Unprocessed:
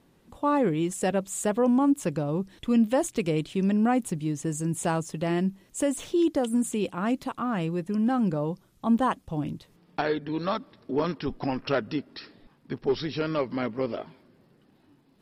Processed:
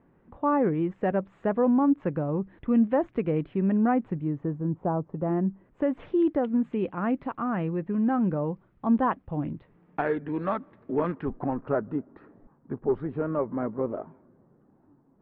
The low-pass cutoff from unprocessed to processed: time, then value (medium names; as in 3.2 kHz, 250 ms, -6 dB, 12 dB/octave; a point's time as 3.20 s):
low-pass 24 dB/octave
4.10 s 1.9 kHz
4.92 s 1 kHz
6.06 s 2.1 kHz
11.06 s 2.1 kHz
11.59 s 1.3 kHz